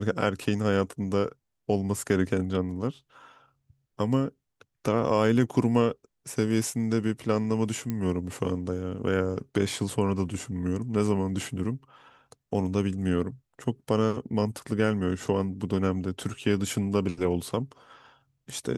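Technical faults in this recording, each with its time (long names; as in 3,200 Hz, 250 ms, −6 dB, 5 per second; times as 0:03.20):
0:07.90: click −17 dBFS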